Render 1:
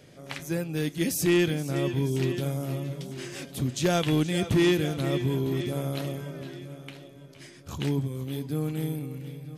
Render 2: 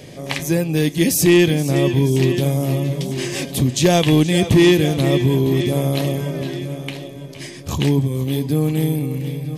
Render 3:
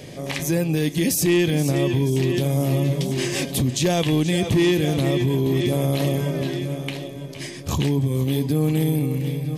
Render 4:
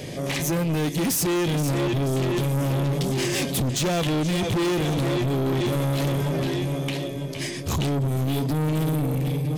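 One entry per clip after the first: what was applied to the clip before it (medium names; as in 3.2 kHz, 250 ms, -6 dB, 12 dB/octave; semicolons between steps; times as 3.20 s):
peaking EQ 1.4 kHz -13.5 dB 0.24 oct; in parallel at +1 dB: compression, threshold -34 dBFS, peak gain reduction 14 dB; on the sum: trim +8 dB
peak limiter -12.5 dBFS, peak gain reduction 7.5 dB
saturation -25.5 dBFS, distortion -8 dB; trim +4.5 dB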